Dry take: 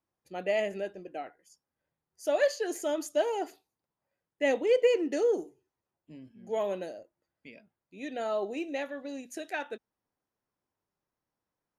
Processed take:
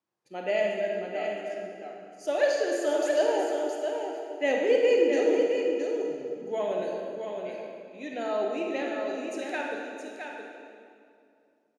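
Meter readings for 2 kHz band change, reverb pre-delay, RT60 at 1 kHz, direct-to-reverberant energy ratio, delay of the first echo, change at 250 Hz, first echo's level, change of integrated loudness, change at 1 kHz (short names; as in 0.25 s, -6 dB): +4.0 dB, 31 ms, 2.3 s, -2.0 dB, 0.668 s, +4.5 dB, -6.0 dB, +2.5 dB, +4.0 dB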